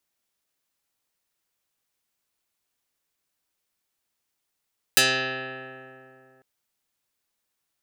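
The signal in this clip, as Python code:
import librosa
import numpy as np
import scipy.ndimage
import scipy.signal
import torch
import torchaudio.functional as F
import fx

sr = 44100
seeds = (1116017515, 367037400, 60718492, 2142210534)

y = fx.pluck(sr, length_s=1.45, note=48, decay_s=2.8, pick=0.12, brightness='dark')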